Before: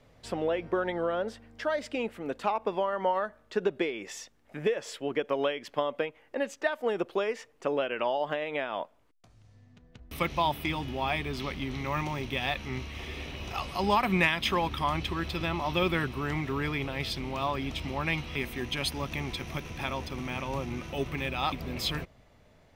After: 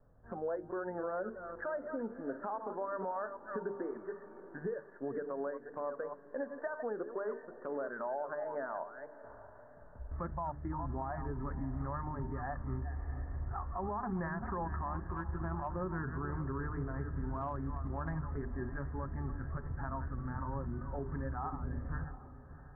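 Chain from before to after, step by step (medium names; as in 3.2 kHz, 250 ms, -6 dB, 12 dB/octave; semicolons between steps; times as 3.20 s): chunks repeated in reverse 259 ms, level -10.5 dB; steep low-pass 1.7 kHz 96 dB/octave; bass shelf 94 Hz +10.5 dB; hum notches 50/100/150/200/250/300/350/400/450 Hz; 14.93–15.68 s: transient shaper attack +10 dB, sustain -4 dB; spectral noise reduction 10 dB; 17.34–18.19 s: transient shaper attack -7 dB, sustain -3 dB; compression 2:1, threshold -40 dBFS, peak gain reduction 11 dB; peak limiter -30 dBFS, peak gain reduction 7 dB; echo that smears into a reverb 662 ms, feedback 46%, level -15 dB; trim +1 dB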